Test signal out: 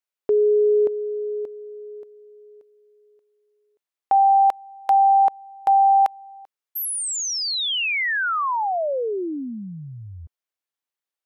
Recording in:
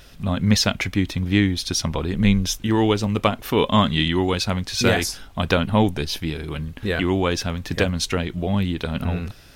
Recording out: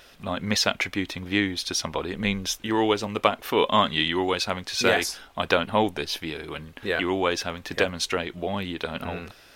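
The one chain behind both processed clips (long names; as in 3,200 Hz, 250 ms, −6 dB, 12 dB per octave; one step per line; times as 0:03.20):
bass and treble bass −15 dB, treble −4 dB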